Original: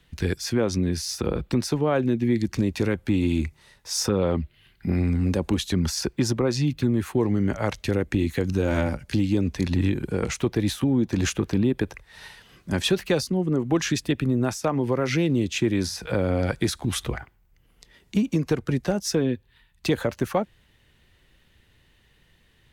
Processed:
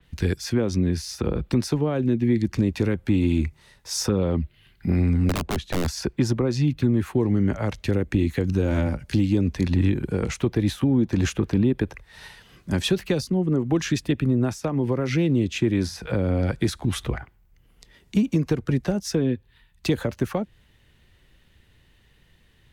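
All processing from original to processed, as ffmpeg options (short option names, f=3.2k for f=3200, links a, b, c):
-filter_complex "[0:a]asettb=1/sr,asplit=3[a][b][c];[a]atrim=end=5.294[d];[b]atrim=start=5.29:end=5.88,asetpts=PTS-STARTPTS,afade=t=in:d=0.004:c=qsin,afade=t=out:st=0.586:d=0.004:c=qsin,aemphasis=mode=reproduction:type=75kf,aeval=exprs='(mod(6.68*val(0)+1,2)-1)/6.68':c=same[e];[c]atrim=start=5.876[f];[d][e]acrossfade=d=0.004:c1=hsin:c2=qsin[g];[g][f]acrossfade=d=0.004:c1=qsin:c2=hsin,lowshelf=f=220:g=3.5,acrossover=split=420|3000[h][i][j];[i]acompressor=threshold=-29dB:ratio=6[k];[h][k][j]amix=inputs=3:normalize=0,adynamicequalizer=threshold=0.00562:dfrequency=3700:dqfactor=0.7:tfrequency=3700:tqfactor=0.7:attack=5:release=100:ratio=0.375:range=3:mode=cutabove:tftype=highshelf"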